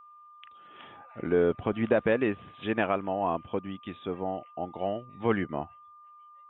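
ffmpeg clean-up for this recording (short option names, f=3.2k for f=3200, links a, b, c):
-af "bandreject=f=1.2k:w=30"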